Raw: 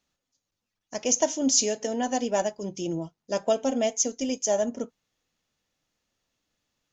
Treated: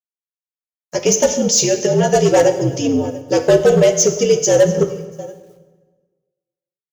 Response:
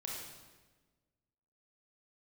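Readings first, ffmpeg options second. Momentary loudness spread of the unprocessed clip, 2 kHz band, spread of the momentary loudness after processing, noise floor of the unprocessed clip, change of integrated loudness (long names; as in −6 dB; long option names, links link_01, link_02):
11 LU, +13.0 dB, 11 LU, −85 dBFS, +11.5 dB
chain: -filter_complex "[0:a]acrossover=split=550|630[link_01][link_02][link_03];[link_01]acontrast=82[link_04];[link_04][link_02][link_03]amix=inputs=3:normalize=0,aecho=1:1:688:0.075,flanger=delay=9.5:depth=3.7:regen=10:speed=0.7:shape=sinusoidal,dynaudnorm=framelen=120:gausssize=7:maxgain=15dB,asplit=2[link_05][link_06];[link_06]highpass=frequency=720:poles=1,volume=12dB,asoftclip=type=tanh:threshold=-1dB[link_07];[link_05][link_07]amix=inputs=2:normalize=0,lowpass=frequency=3700:poles=1,volume=-6dB,agate=range=-14dB:threshold=-30dB:ratio=16:detection=peak,equalizer=frequency=510:width_type=o:width=0.55:gain=5.5,asoftclip=type=hard:threshold=-3.5dB,acrusher=bits=9:mix=0:aa=0.000001,highshelf=frequency=5800:gain=8,afreqshift=-67,asplit=2[link_08][link_09];[1:a]atrim=start_sample=2205[link_10];[link_09][link_10]afir=irnorm=-1:irlink=0,volume=-5dB[link_11];[link_08][link_11]amix=inputs=2:normalize=0,volume=-5.5dB"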